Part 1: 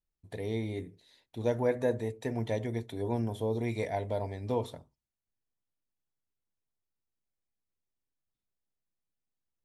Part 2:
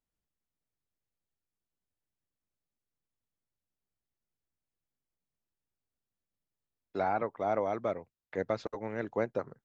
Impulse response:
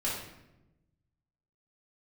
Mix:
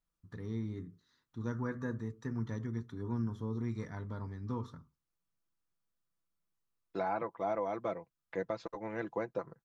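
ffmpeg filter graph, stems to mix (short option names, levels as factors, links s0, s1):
-filter_complex "[0:a]firequalizer=gain_entry='entry(110,0);entry(160,5);entry(660,-21);entry(1200,11);entry(2300,-15);entry(5900,-3);entry(8700,-20)':delay=0.05:min_phase=1,volume=0.708[s0];[1:a]equalizer=f=1000:w=5.6:g=5,aecho=1:1:6:0.54,alimiter=limit=0.0841:level=0:latency=1:release=428,volume=0.75[s1];[s0][s1]amix=inputs=2:normalize=0"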